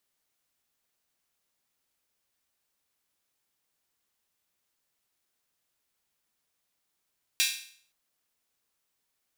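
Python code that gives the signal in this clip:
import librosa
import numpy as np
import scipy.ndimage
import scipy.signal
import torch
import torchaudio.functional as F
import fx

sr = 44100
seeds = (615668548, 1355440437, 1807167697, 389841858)

y = fx.drum_hat_open(sr, length_s=0.52, from_hz=2700.0, decay_s=0.54)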